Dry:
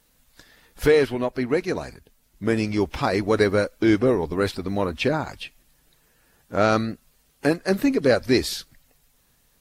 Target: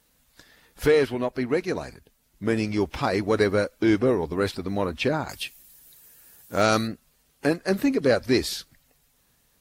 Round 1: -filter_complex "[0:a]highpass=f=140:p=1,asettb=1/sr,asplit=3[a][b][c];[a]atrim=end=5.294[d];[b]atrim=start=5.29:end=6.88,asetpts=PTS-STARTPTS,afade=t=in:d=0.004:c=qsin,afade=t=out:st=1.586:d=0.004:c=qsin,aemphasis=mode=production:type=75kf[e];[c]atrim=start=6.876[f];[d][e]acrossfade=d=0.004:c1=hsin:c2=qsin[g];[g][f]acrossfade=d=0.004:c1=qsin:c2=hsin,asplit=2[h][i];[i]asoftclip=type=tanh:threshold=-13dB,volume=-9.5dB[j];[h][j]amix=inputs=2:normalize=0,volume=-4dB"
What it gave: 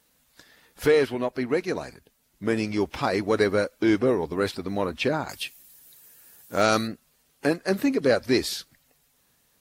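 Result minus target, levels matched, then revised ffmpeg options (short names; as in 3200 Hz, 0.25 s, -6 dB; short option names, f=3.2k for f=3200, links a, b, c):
125 Hz band -2.5 dB
-filter_complex "[0:a]highpass=f=39:p=1,asettb=1/sr,asplit=3[a][b][c];[a]atrim=end=5.294[d];[b]atrim=start=5.29:end=6.88,asetpts=PTS-STARTPTS,afade=t=in:d=0.004:c=qsin,afade=t=out:st=1.586:d=0.004:c=qsin,aemphasis=mode=production:type=75kf[e];[c]atrim=start=6.876[f];[d][e]acrossfade=d=0.004:c1=hsin:c2=qsin[g];[g][f]acrossfade=d=0.004:c1=qsin:c2=hsin,asplit=2[h][i];[i]asoftclip=type=tanh:threshold=-13dB,volume=-9.5dB[j];[h][j]amix=inputs=2:normalize=0,volume=-4dB"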